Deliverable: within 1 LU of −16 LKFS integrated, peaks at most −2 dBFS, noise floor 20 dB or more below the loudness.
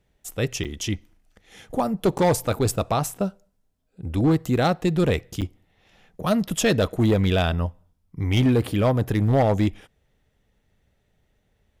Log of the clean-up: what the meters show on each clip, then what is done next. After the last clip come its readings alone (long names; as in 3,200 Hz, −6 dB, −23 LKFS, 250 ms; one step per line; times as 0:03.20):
share of clipped samples 1.1%; peaks flattened at −13.5 dBFS; number of dropouts 3; longest dropout 7.8 ms; integrated loudness −23.0 LKFS; sample peak −13.5 dBFS; target loudness −16.0 LKFS
→ clipped peaks rebuilt −13.5 dBFS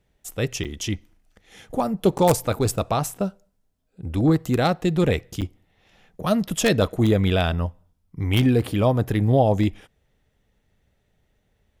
share of clipped samples 0.0%; number of dropouts 3; longest dropout 7.8 ms
→ repair the gap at 0:00.64/0:02.18/0:05.41, 7.8 ms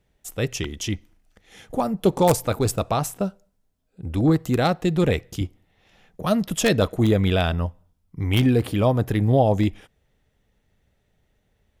number of dropouts 0; integrated loudness −22.5 LKFS; sample peak −4.5 dBFS; target loudness −16.0 LKFS
→ level +6.5 dB
brickwall limiter −2 dBFS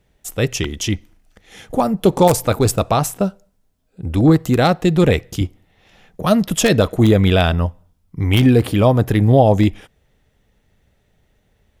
integrated loudness −16.5 LKFS; sample peak −2.0 dBFS; background noise floor −63 dBFS